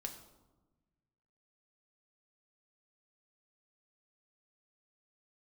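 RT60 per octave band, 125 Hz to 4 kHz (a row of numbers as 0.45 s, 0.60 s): 2.0 s, 1.6 s, 1.2 s, 1.1 s, 0.70 s, 0.65 s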